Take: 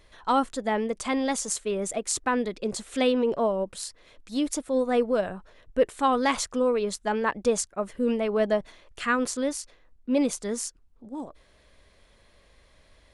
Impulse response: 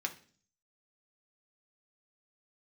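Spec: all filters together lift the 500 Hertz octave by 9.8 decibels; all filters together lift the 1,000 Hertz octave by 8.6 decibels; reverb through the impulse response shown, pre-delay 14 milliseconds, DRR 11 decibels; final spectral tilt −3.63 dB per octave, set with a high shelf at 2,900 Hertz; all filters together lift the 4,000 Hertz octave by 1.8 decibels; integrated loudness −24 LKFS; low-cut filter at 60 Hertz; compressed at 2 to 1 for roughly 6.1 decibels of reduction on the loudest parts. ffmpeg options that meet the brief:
-filter_complex "[0:a]highpass=60,equalizer=frequency=500:width_type=o:gain=9,equalizer=frequency=1000:width_type=o:gain=8,highshelf=frequency=2900:gain=-4,equalizer=frequency=4000:width_type=o:gain=5,acompressor=threshold=-19dB:ratio=2,asplit=2[link_01][link_02];[1:a]atrim=start_sample=2205,adelay=14[link_03];[link_02][link_03]afir=irnorm=-1:irlink=0,volume=-13.5dB[link_04];[link_01][link_04]amix=inputs=2:normalize=0,volume=-1.5dB"

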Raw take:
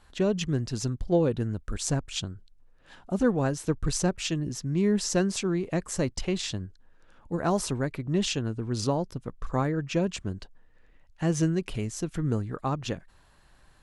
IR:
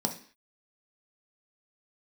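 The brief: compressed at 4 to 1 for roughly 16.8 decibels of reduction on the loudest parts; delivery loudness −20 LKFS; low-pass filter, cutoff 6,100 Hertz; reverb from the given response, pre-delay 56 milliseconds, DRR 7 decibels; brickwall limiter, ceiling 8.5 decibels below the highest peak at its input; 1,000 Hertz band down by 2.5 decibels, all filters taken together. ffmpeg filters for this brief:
-filter_complex "[0:a]lowpass=6100,equalizer=frequency=1000:width_type=o:gain=-3.5,acompressor=threshold=-41dB:ratio=4,alimiter=level_in=10dB:limit=-24dB:level=0:latency=1,volume=-10dB,asplit=2[link_01][link_02];[1:a]atrim=start_sample=2205,adelay=56[link_03];[link_02][link_03]afir=irnorm=-1:irlink=0,volume=-13dB[link_04];[link_01][link_04]amix=inputs=2:normalize=0,volume=22dB"

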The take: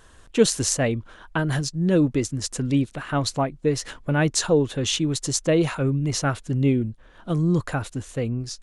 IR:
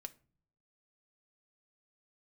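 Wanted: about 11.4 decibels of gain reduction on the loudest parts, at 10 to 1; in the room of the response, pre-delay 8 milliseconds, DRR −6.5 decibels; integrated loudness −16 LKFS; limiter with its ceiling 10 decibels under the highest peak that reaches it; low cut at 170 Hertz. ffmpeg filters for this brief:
-filter_complex "[0:a]highpass=170,acompressor=threshold=-23dB:ratio=10,alimiter=limit=-18.5dB:level=0:latency=1,asplit=2[link_01][link_02];[1:a]atrim=start_sample=2205,adelay=8[link_03];[link_02][link_03]afir=irnorm=-1:irlink=0,volume=11.5dB[link_04];[link_01][link_04]amix=inputs=2:normalize=0,volume=7dB"

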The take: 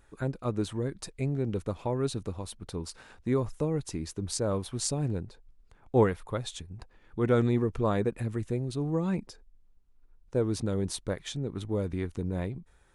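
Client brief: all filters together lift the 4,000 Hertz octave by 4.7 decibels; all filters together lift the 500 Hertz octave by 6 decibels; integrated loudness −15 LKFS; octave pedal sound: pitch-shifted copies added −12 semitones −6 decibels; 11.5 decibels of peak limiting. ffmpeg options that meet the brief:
ffmpeg -i in.wav -filter_complex "[0:a]equalizer=frequency=500:width_type=o:gain=7,equalizer=frequency=4000:width_type=o:gain=5.5,alimiter=limit=-19dB:level=0:latency=1,asplit=2[link_01][link_02];[link_02]asetrate=22050,aresample=44100,atempo=2,volume=-6dB[link_03];[link_01][link_03]amix=inputs=2:normalize=0,volume=14.5dB" out.wav

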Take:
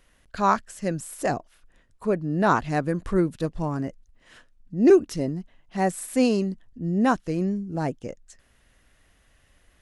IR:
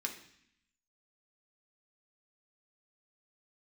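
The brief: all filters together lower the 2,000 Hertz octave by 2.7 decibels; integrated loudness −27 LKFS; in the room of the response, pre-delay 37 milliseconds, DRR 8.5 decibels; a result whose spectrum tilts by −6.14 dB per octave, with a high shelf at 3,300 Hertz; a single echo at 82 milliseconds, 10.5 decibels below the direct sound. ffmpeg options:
-filter_complex "[0:a]equalizer=frequency=2000:width_type=o:gain=-5,highshelf=frequency=3300:gain=4,aecho=1:1:82:0.299,asplit=2[link_01][link_02];[1:a]atrim=start_sample=2205,adelay=37[link_03];[link_02][link_03]afir=irnorm=-1:irlink=0,volume=-9.5dB[link_04];[link_01][link_04]amix=inputs=2:normalize=0,volume=-2.5dB"

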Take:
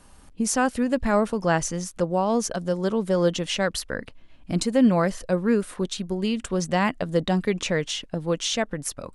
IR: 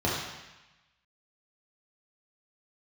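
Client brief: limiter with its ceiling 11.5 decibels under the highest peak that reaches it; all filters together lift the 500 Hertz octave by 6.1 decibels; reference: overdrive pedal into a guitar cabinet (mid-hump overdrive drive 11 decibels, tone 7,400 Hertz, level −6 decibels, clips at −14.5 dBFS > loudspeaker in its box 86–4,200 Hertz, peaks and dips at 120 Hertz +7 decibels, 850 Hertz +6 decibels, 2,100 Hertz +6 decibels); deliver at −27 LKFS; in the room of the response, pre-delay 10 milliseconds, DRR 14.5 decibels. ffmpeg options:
-filter_complex "[0:a]equalizer=frequency=500:width_type=o:gain=6.5,alimiter=limit=-17.5dB:level=0:latency=1,asplit=2[link_01][link_02];[1:a]atrim=start_sample=2205,adelay=10[link_03];[link_02][link_03]afir=irnorm=-1:irlink=0,volume=-27dB[link_04];[link_01][link_04]amix=inputs=2:normalize=0,asplit=2[link_05][link_06];[link_06]highpass=frequency=720:poles=1,volume=11dB,asoftclip=type=tanh:threshold=-14.5dB[link_07];[link_05][link_07]amix=inputs=2:normalize=0,lowpass=frequency=7400:poles=1,volume=-6dB,highpass=86,equalizer=frequency=120:width_type=q:width=4:gain=7,equalizer=frequency=850:width_type=q:width=4:gain=6,equalizer=frequency=2100:width_type=q:width=4:gain=6,lowpass=frequency=4200:width=0.5412,lowpass=frequency=4200:width=1.3066,volume=-1.5dB"

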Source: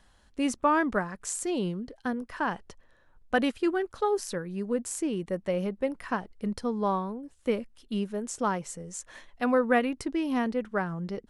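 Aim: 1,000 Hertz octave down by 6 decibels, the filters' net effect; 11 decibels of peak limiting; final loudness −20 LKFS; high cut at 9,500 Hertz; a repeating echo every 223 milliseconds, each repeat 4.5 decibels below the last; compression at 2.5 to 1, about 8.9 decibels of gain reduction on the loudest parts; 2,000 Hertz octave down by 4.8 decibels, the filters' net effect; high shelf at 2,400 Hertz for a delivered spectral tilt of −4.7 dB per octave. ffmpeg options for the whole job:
ffmpeg -i in.wav -af "lowpass=9500,equalizer=frequency=1000:width_type=o:gain=-7.5,equalizer=frequency=2000:width_type=o:gain=-5.5,highshelf=frequency=2400:gain=5,acompressor=threshold=-34dB:ratio=2.5,alimiter=level_in=4dB:limit=-24dB:level=0:latency=1,volume=-4dB,aecho=1:1:223|446|669|892|1115|1338|1561|1784|2007:0.596|0.357|0.214|0.129|0.0772|0.0463|0.0278|0.0167|0.01,volume=16.5dB" out.wav

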